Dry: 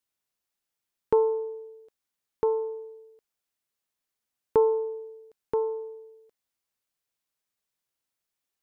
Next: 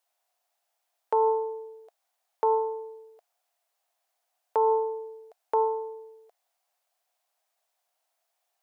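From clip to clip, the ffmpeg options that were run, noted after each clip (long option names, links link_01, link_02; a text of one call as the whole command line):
ffmpeg -i in.wav -af "highpass=frequency=700:width_type=q:width=6.5,alimiter=limit=-20.5dB:level=0:latency=1:release=58,volume=5dB" out.wav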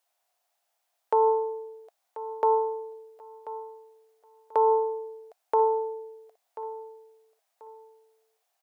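ffmpeg -i in.wav -af "aecho=1:1:1037|2074|3111:0.178|0.0498|0.0139,volume=1.5dB" out.wav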